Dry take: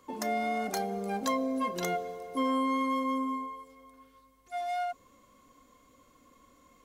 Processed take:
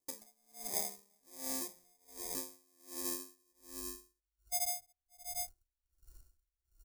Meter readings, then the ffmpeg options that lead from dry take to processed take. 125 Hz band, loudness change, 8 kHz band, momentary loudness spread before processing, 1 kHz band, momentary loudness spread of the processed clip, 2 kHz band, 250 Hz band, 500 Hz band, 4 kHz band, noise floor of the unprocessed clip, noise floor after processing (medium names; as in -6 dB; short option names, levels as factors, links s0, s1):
-17.5 dB, -7.5 dB, +6.0 dB, 9 LU, -19.5 dB, 18 LU, -16.0 dB, -19.0 dB, -17.0 dB, -3.5 dB, -63 dBFS, under -85 dBFS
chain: -filter_complex "[0:a]asubboost=boost=11.5:cutoff=80,afwtdn=0.0112,equalizer=f=5300:t=o:w=0.67:g=-11.5,asplit=2[s0][s1];[s1]aecho=0:1:565:0.251[s2];[s0][s2]amix=inputs=2:normalize=0,acompressor=threshold=0.00631:ratio=3,acrusher=samples=31:mix=1:aa=0.000001,bandreject=f=81.02:t=h:w=4,bandreject=f=162.04:t=h:w=4,bandreject=f=243.06:t=h:w=4,bandreject=f=324.08:t=h:w=4,bandreject=f=405.1:t=h:w=4,bandreject=f=486.12:t=h:w=4,bandreject=f=567.14:t=h:w=4,bandreject=f=648.16:t=h:w=4,bandreject=f=729.18:t=h:w=4,bandreject=f=810.2:t=h:w=4,bandreject=f=891.22:t=h:w=4,bandreject=f=972.24:t=h:w=4,bandreject=f=1053.26:t=h:w=4,bandreject=f=1134.28:t=h:w=4,bandreject=f=1215.3:t=h:w=4,bandreject=f=1296.32:t=h:w=4,bandreject=f=1377.34:t=h:w=4,bandreject=f=1458.36:t=h:w=4,bandreject=f=1539.38:t=h:w=4,bandreject=f=1620.4:t=h:w=4,bandreject=f=1701.42:t=h:w=4,bandreject=f=1782.44:t=h:w=4,bandreject=f=1863.46:t=h:w=4,bandreject=f=1944.48:t=h:w=4,bandreject=f=2025.5:t=h:w=4,bandreject=f=2106.52:t=h:w=4,bandreject=f=2187.54:t=h:w=4,bandreject=f=2268.56:t=h:w=4,bandreject=f=2349.58:t=h:w=4,bandreject=f=2430.6:t=h:w=4,bandreject=f=2511.62:t=h:w=4,aexciter=amount=8.6:drive=5.4:freq=4700,agate=range=0.2:threshold=0.00126:ratio=16:detection=peak,aeval=exprs='val(0)*pow(10,-37*(0.5-0.5*cos(2*PI*1.3*n/s))/20)':c=same"